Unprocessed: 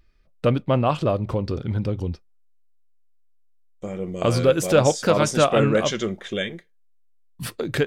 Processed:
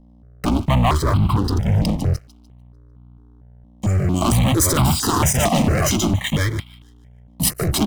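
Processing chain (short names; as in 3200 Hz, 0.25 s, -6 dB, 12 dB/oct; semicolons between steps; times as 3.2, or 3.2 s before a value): octaver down 1 oct, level +3 dB; HPF 76 Hz 24 dB/oct; high shelf 4600 Hz +9.5 dB; comb 1 ms, depth 83%; sample leveller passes 5; level quantiser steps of 9 dB; limiter -10.5 dBFS, peak gain reduction 6.5 dB; hum 60 Hz, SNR 24 dB; thin delay 0.149 s, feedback 38%, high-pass 1600 Hz, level -15.5 dB; crossover distortion -46.5 dBFS; step phaser 4.4 Hz 390–1800 Hz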